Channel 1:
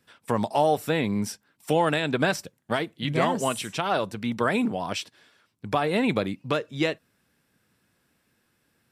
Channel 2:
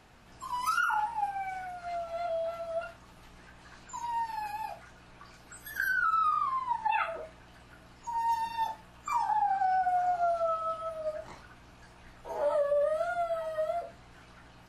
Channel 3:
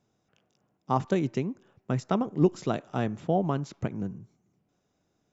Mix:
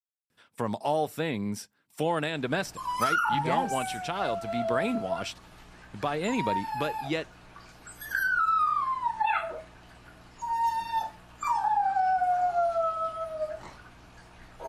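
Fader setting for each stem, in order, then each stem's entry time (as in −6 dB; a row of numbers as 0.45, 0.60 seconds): −5.5 dB, +2.5 dB, muted; 0.30 s, 2.35 s, muted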